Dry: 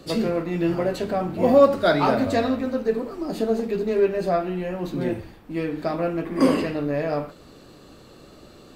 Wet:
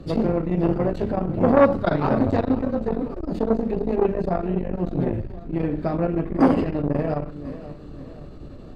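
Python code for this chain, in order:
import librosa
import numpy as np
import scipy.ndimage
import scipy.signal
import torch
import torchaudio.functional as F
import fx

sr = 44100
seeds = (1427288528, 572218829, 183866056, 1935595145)

y = fx.riaa(x, sr, side='playback')
y = fx.echo_feedback(y, sr, ms=524, feedback_pct=46, wet_db=-16.0)
y = fx.transformer_sat(y, sr, knee_hz=650.0)
y = F.gain(torch.from_numpy(y), -1.0).numpy()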